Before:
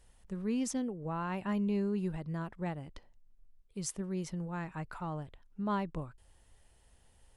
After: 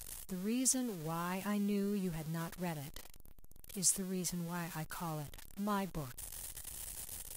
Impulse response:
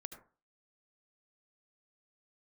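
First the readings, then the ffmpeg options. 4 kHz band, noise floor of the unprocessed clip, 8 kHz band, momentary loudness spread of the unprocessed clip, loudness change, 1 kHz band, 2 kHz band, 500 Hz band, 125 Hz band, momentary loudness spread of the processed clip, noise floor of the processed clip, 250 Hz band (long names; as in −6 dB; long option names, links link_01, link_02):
+5.5 dB, −65 dBFS, +9.5 dB, 12 LU, −1.0 dB, −3.0 dB, −0.5 dB, −3.5 dB, −2.5 dB, 13 LU, −52 dBFS, −3.5 dB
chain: -af "aeval=exprs='val(0)+0.5*0.00668*sgn(val(0))':channel_layout=same,aemphasis=mode=production:type=75kf,volume=-4.5dB" -ar 48000 -c:a libvorbis -b:a 48k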